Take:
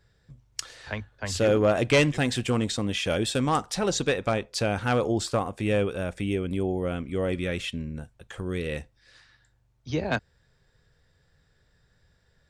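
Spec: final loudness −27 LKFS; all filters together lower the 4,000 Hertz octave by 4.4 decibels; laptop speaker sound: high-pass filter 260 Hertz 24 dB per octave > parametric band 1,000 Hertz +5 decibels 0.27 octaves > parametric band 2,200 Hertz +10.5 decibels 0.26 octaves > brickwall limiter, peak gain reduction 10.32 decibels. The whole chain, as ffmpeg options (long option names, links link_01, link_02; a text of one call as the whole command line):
ffmpeg -i in.wav -af "highpass=frequency=260:width=0.5412,highpass=frequency=260:width=1.3066,equalizer=frequency=1000:width_type=o:width=0.27:gain=5,equalizer=frequency=2200:width_type=o:width=0.26:gain=10.5,equalizer=frequency=4000:width_type=o:gain=-6.5,volume=3dB,alimiter=limit=-13.5dB:level=0:latency=1" out.wav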